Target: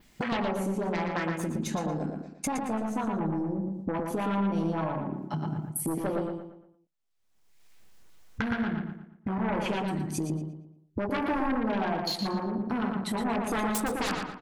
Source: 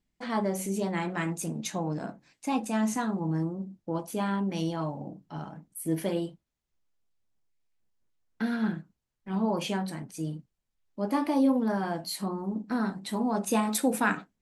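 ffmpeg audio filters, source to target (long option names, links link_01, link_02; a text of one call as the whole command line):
ffmpeg -i in.wav -filter_complex "[0:a]asettb=1/sr,asplit=3[link_01][link_02][link_03];[link_01]atrim=end=0.964[link_04];[link_02]atrim=start=0.96:end=3.13,asetpts=PTS-STARTPTS,afade=type=in:duration=0.004:curve=qsin,afade=type=out:start_time=2.166:duration=0.004:curve=qsin,aeval=exprs='(tanh(11.2*val(0)+0.65)-tanh(0.65))/11.2':channel_layout=same[link_05];[link_03]atrim=start=3.126[link_06];[link_04][link_05]acrossfade=duration=0.004:curve1=hsin:curve2=qsin[link_07];[link_07][link_06]acrossfade=duration=0.004:curve1=qsin:curve2=hsin,agate=range=-33dB:threshold=-49dB:ratio=3:detection=peak,lowshelf=frequency=470:gain=-8,afwtdn=0.0141,acompressor=mode=upward:threshold=-40dB:ratio=2.5,aeval=exprs='0.2*sin(PI/2*5.62*val(0)/0.2)':channel_layout=same,adynamicequalizer=threshold=0.00631:dfrequency=8000:dqfactor=0.74:tfrequency=8000:tqfactor=0.74:attack=5:release=100:ratio=0.375:range=2:mode=cutabove:tftype=bell,acompressor=threshold=-31dB:ratio=8,asplit=2[link_08][link_09];[link_09]adelay=116,lowpass=frequency=3700:poles=1,volume=-3.5dB,asplit=2[link_10][link_11];[link_11]adelay=116,lowpass=frequency=3700:poles=1,volume=0.4,asplit=2[link_12][link_13];[link_13]adelay=116,lowpass=frequency=3700:poles=1,volume=0.4,asplit=2[link_14][link_15];[link_15]adelay=116,lowpass=frequency=3700:poles=1,volume=0.4,asplit=2[link_16][link_17];[link_17]adelay=116,lowpass=frequency=3700:poles=1,volume=0.4[link_18];[link_08][link_10][link_12][link_14][link_16][link_18]amix=inputs=6:normalize=0,volume=1.5dB" out.wav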